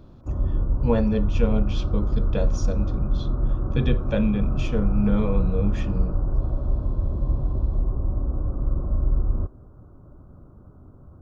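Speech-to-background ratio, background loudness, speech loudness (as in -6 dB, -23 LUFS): 0.0 dB, -27.0 LUFS, -27.0 LUFS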